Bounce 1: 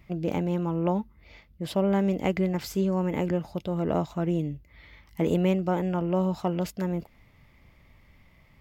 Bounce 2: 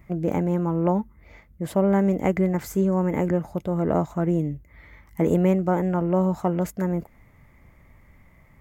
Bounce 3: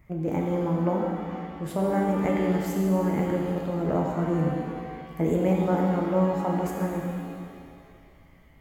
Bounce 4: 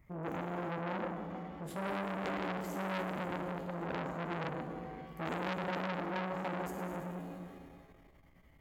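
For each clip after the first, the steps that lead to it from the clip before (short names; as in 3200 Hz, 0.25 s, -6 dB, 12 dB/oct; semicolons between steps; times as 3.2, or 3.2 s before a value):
band shelf 3700 Hz -11.5 dB 1.3 oct; gain +4 dB
shimmer reverb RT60 2 s, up +7 st, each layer -8 dB, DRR -0.5 dB; gain -5.5 dB
core saturation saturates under 2200 Hz; gain -6.5 dB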